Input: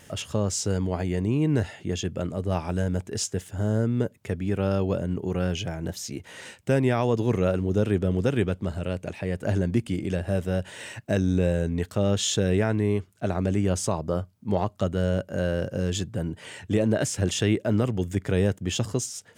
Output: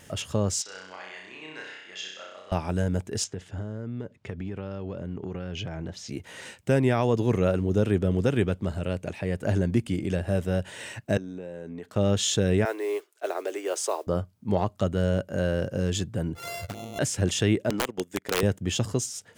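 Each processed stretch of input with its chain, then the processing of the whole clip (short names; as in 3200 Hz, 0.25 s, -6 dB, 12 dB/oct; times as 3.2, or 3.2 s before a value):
0.62–2.52 HPF 1500 Hz + air absorption 140 m + flutter echo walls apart 5.5 m, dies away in 0.82 s
3.24–6.09 LPF 4600 Hz + compressor 12:1, threshold -29 dBFS
11.17–11.96 HPF 240 Hz + high shelf 2900 Hz -10.5 dB + compressor, threshold -34 dBFS
12.65–14.07 steep high-pass 350 Hz 48 dB/oct + modulation noise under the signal 25 dB
16.35–16.99 sample sorter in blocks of 64 samples + envelope flanger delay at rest 2.4 ms, full sweep at -20 dBFS + negative-ratio compressor -36 dBFS
17.7–18.43 HPF 310 Hz + transient shaper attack +2 dB, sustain -11 dB + wrapped overs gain 18 dB
whole clip: dry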